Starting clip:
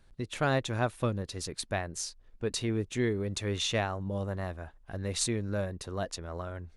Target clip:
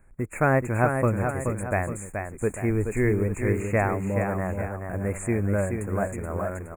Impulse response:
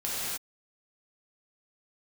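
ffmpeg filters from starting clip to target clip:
-filter_complex "[0:a]asplit=3[s0][s1][s2];[s0]afade=t=out:st=2.69:d=0.02[s3];[s1]asubboost=boost=10.5:cutoff=55,afade=t=in:st=2.69:d=0.02,afade=t=out:st=3.09:d=0.02[s4];[s2]afade=t=in:st=3.09:d=0.02[s5];[s3][s4][s5]amix=inputs=3:normalize=0,asplit=2[s6][s7];[s7]acrusher=bits=6:mix=0:aa=0.000001,volume=0.299[s8];[s6][s8]amix=inputs=2:normalize=0,acrossover=split=3300[s9][s10];[s10]acompressor=threshold=0.0126:ratio=4:attack=1:release=60[s11];[s9][s11]amix=inputs=2:normalize=0,asuperstop=centerf=4200:order=20:qfactor=0.95,aecho=1:1:427|845:0.501|0.237,volume=1.68"

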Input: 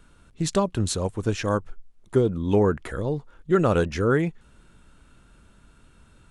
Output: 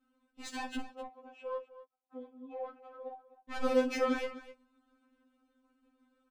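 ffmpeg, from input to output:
-filter_complex "[0:a]aemphasis=mode=production:type=75fm,agate=range=0.0224:threshold=0.00501:ratio=3:detection=peak,highpass=55,highshelf=f=4800:g=4.5,alimiter=limit=0.188:level=0:latency=1:release=52,asettb=1/sr,asplit=3[s0][s1][s2];[s0]atrim=end=0.814[s3];[s1]atrim=start=0.81:end=3.51,asetpts=PTS-STARTPTS,afade=t=in:d=0.004:c=qsin,afade=t=out:st=2.696:d=0.004:c=qsin,asplit=3[s4][s5][s6];[s4]bandpass=f=730:t=q:w=8,volume=1[s7];[s5]bandpass=f=1090:t=q:w=8,volume=0.501[s8];[s6]bandpass=f=2440:t=q:w=8,volume=0.355[s9];[s7][s8][s9]amix=inputs=3:normalize=0[s10];[s2]atrim=start=3.506[s11];[s3][s10]acrossfade=d=0.004:c1=hsin:c2=qsin[s12];[s12][s11]acrossfade=d=0.004:c1=qsin:c2=hsin,volume=13.3,asoftclip=hard,volume=0.075,adynamicsmooth=sensitivity=2.5:basefreq=1300,aecho=1:1:44|56|254:0.211|0.158|0.168,afftfilt=real='re*3.46*eq(mod(b,12),0)':imag='im*3.46*eq(mod(b,12),0)':win_size=2048:overlap=0.75"

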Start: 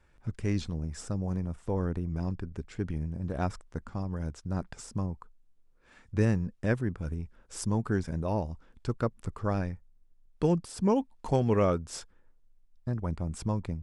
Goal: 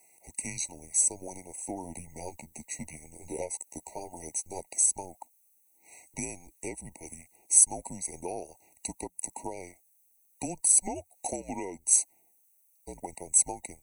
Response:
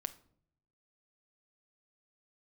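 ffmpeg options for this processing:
-filter_complex "[0:a]highpass=800,acompressor=threshold=0.0112:ratio=10,aexciter=amount=13.8:drive=6.1:freq=6900,afreqshift=-180,asettb=1/sr,asplit=3[s0][s1][s2];[s0]atrim=end=1.834[s3];[s1]atrim=start=1.83:end=4.6,asetpts=PTS-STARTPTS,afade=t=in:d=0.004:c=qsin,afade=t=out:st=2.766:d=0.004:c=qsin,asplit=2[s4][s5];[s5]adelay=13,volume=0.562[s6];[s4][s6]amix=inputs=2:normalize=0,atrim=end_sample=122157[s7];[s2]atrim=start=4.596[s8];[s3][s7]acrossfade=d=0.004:c1=hsin:c2=qsin[s9];[s9][s8]acrossfade=d=0.004:c1=qsin:c2=hsin,afftfilt=real='re*eq(mod(floor(b*sr/1024/950),2),0)':imag='im*eq(mod(floor(b*sr/1024/950),2),0)':win_size=1024:overlap=0.75,volume=2.37"

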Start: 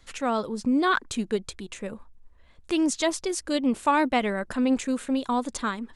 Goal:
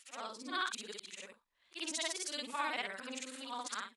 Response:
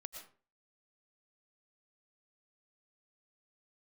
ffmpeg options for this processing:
-filter_complex "[0:a]afftfilt=real='re':imag='-im':win_size=8192:overlap=0.75,acrossover=split=4900[s0][s1];[s0]dynaudnorm=f=160:g=5:m=5.01[s2];[s2][s1]amix=inputs=2:normalize=0,atempo=1.5,aderivative,volume=0.596"

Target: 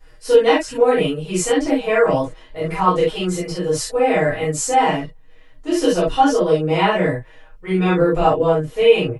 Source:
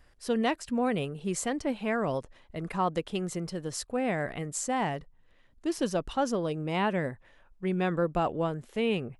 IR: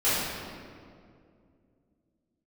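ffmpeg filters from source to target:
-filter_complex "[0:a]aecho=1:1:6.3:0.84[s0];[1:a]atrim=start_sample=2205,afade=t=out:st=0.13:d=0.01,atrim=end_sample=6174[s1];[s0][s1]afir=irnorm=-1:irlink=0,volume=0.841"

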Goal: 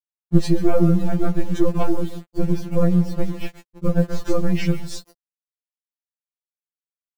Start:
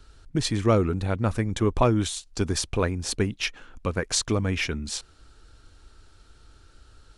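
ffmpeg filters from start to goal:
-filter_complex "[0:a]highpass=79,lowshelf=f=100:g=10.5,bandreject=f=400:w=12,aecho=1:1:141|282:0.2|0.0359,acrusher=bits=6:mode=log:mix=0:aa=0.000001,acompressor=threshold=0.0708:ratio=2.5,aeval=exprs='0.251*(cos(1*acos(clip(val(0)/0.251,-1,1)))-cos(1*PI/2))+0.0562*(cos(5*acos(clip(val(0)/0.251,-1,1)))-cos(5*PI/2))+0.1*(cos(6*acos(clip(val(0)/0.251,-1,1)))-cos(6*PI/2))+0.00224*(cos(7*acos(clip(val(0)/0.251,-1,1)))-cos(7*PI/2))+0.0398*(cos(8*acos(clip(val(0)/0.251,-1,1)))-cos(8*PI/2))':c=same,asettb=1/sr,asplit=3[s0][s1][s2];[s0]atrim=end=1.834[s3];[s1]atrim=start=1.83:end=4.24,asetpts=PTS-STARTPTS,afade=t=in:d=0.004:c=qsin,afade=t=out:st=2.406:d=0.004:c=qsin,lowpass=f=1600:p=1[s4];[s2]atrim=start=4.236[s5];[s3][s4]acrossfade=d=0.004:c1=hsin:c2=qsin[s6];[s6][s5]acrossfade=d=0.004:c1=qsin:c2=hsin,afftfilt=real='re*gte(hypot(re,im),0.0282)':imag='im*gte(hypot(re,im),0.0282)':win_size=1024:overlap=0.75,acrusher=bits=5:mix=0:aa=0.000001,tiltshelf=f=750:g=7.5,afftfilt=real='re*2.83*eq(mod(b,8),0)':imag='im*2.83*eq(mod(b,8),0)':win_size=2048:overlap=0.75,volume=1.12"

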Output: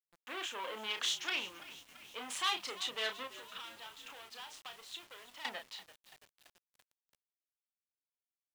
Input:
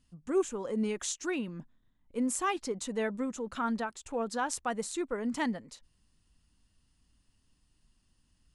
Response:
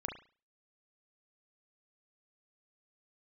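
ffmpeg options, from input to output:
-filter_complex "[0:a]adynamicsmooth=sensitivity=6:basefreq=7100,equalizer=f=1000:t=o:w=1:g=5,equalizer=f=2000:t=o:w=1:g=3,equalizer=f=8000:t=o:w=1:g=-7,aeval=exprs='(tanh(56.2*val(0)+0.4)-tanh(0.4))/56.2':c=same,asplit=2[s0][s1];[s1]adelay=32,volume=0.473[s2];[s0][s2]amix=inputs=2:normalize=0,asettb=1/sr,asplit=3[s3][s4][s5];[s3]atrim=end=3.274[s6];[s4]atrim=start=3.27:end=5.45,asetpts=PTS-STARTPTS,afade=t=in:d=0.004:c=qsin,afade=t=out:st=2.176:d=0.004:c=qsin,acompressor=threshold=0.00398:ratio=12[s7];[s5]atrim=start=5.446[s8];[s6][s7]acrossfade=d=0.004:c1=hsin:c2=qsin[s9];[s9][s8]acrossfade=d=0.004:c1=qsin:c2=hsin,highpass=760,equalizer=f=3200:w=1.5:g=13.5,asplit=7[s10][s11][s12][s13][s14][s15][s16];[s11]adelay=336,afreqshift=-56,volume=0.141[s17];[s12]adelay=672,afreqshift=-112,volume=0.0871[s18];[s13]adelay=1008,afreqshift=-168,volume=0.0543[s19];[s14]adelay=1344,afreqshift=-224,volume=0.0335[s20];[s15]adelay=1680,afreqshift=-280,volume=0.0209[s21];[s16]adelay=2016,afreqshift=-336,volume=0.0129[s22];[s10][s17][s18][s19][s20][s21][s22]amix=inputs=7:normalize=0,acrusher=bits=9:mix=0:aa=0.000001,volume=1.19"

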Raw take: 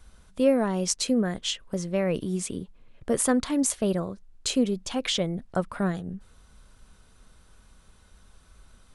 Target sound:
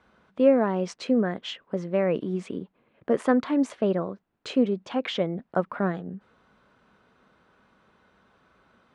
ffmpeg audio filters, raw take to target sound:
-af "highpass=210,lowpass=2100,volume=1.41"

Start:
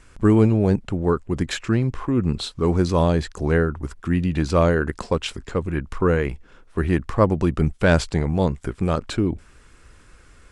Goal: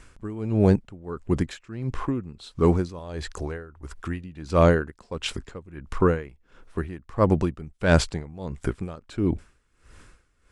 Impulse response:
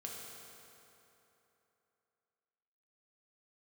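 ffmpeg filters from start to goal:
-filter_complex "[0:a]asettb=1/sr,asplit=3[s0][s1][s2];[s0]atrim=end=2.994[s3];[s1]atrim=start=2.99:end=4.24,asetpts=PTS-STARTPTS,afade=t=in:d=0.004:c=qsin,afade=t=out:st=1.246:d=0.004:c=qsin,equalizer=f=190:t=o:w=1.3:g=-7.5[s4];[s2]atrim=start=4.236[s5];[s3][s4]acrossfade=d=0.004:c1=hsin:c2=qsin[s6];[s6][s5]acrossfade=d=0.004:c1=qsin:c2=hsin,aeval=exprs='val(0)*pow(10,-21*(0.5-0.5*cos(2*PI*1.5*n/s))/20)':c=same,volume=1.19"

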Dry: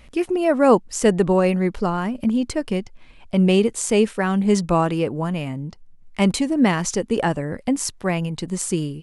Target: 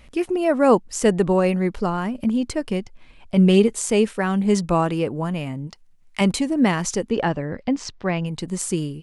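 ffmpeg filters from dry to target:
-filter_complex "[0:a]asettb=1/sr,asplit=3[s0][s1][s2];[s0]atrim=end=3.364[s3];[s1]atrim=start=3.36:end=3.79,asetpts=PTS-STARTPTS,afade=t=in:d=0.004:c=qsin,afade=t=out:st=0.426:d=0.004:c=qsin,aecho=1:1:4.8:0.51,atrim=end_sample=18963[s4];[s2]atrim=start=3.786[s5];[s3][s4]acrossfade=d=0.004:c1=hsin:c2=qsin[s6];[s6][s5]acrossfade=d=0.004:c1=qsin:c2=hsin,asettb=1/sr,asplit=3[s7][s8][s9];[s7]atrim=end=5.674[s10];[s8]atrim=start=5.67:end=6.21,asetpts=PTS-STARTPTS,afade=t=in:d=0.004:c=qsin,afade=t=out:st=0.536:d=0.004:c=qsin,tiltshelf=f=690:g=-7[s11];[s9]atrim=start=6.206[s12];[s10][s11]acrossfade=d=0.004:c1=hsin:c2=qsin[s13];[s13][s12]acrossfade=d=0.004:c1=qsin:c2=hsin,asettb=1/sr,asplit=3[s14][s15][s16];[s14]atrim=end=7.104[s17];[s15]atrim=start=7.1:end=8.26,asetpts=PTS-STARTPTS,afade=t=in:d=0.004:c=qsin,afade=t=out:st=1.156:d=0.004:c=qsin,lowpass=f=5400:w=0.5412,lowpass=f=5400:w=1.3066[s18];[s16]atrim=start=8.256[s19];[s17][s18]acrossfade=d=0.004:c1=hsin:c2=qsin[s20];[s20][s19]acrossfade=d=0.004:c1=qsin:c2=hsin,volume=0.891"

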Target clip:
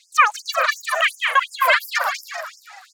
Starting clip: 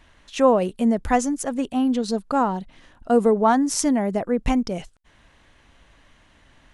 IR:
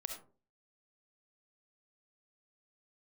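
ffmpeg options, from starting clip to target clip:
-filter_complex "[0:a]acrossover=split=300 4600:gain=0.2 1 0.0708[s0][s1][s2];[s0][s1][s2]amix=inputs=3:normalize=0,asplit=2[s3][s4];[s4]aecho=0:1:530:0.376[s5];[s3][s5]amix=inputs=2:normalize=0,asetrate=100989,aresample=44100,asplit=2[s6][s7];[s7]asplit=6[s8][s9][s10][s11][s12][s13];[s8]adelay=193,afreqshift=56,volume=0.668[s14];[s9]adelay=386,afreqshift=112,volume=0.302[s15];[s10]adelay=579,afreqshift=168,volume=0.135[s16];[s11]adelay=772,afreqshift=224,volume=0.061[s17];[s12]adelay=965,afreqshift=280,volume=0.0275[s18];[s13]adelay=1158,afreqshift=336,volume=0.0123[s19];[s14][s15][s16][s17][s18][s19]amix=inputs=6:normalize=0[s20];[s6][s20]amix=inputs=2:normalize=0,afftfilt=real='re*gte(b*sr/1024,440*pow(5000/440,0.5+0.5*sin(2*PI*2.8*pts/sr)))':imag='im*gte(b*sr/1024,440*pow(5000/440,0.5+0.5*sin(2*PI*2.8*pts/sr)))':win_size=1024:overlap=0.75,volume=1.78"

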